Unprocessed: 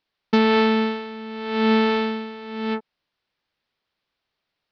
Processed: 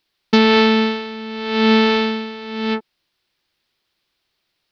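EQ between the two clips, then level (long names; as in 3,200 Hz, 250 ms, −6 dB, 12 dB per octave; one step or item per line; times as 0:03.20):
low-shelf EQ 210 Hz +4.5 dB
parametric band 350 Hz +7 dB 0.26 octaves
high-shelf EQ 2,800 Hz +11.5 dB
+2.0 dB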